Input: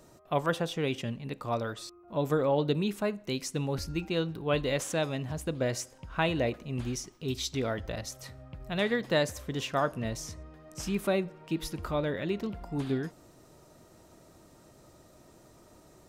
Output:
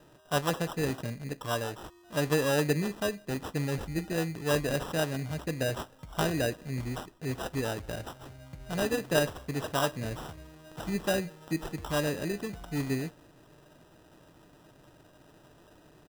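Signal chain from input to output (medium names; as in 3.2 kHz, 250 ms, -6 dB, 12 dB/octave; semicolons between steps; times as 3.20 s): comb 6.7 ms, depth 30%; sample-and-hold 20×; trim -1 dB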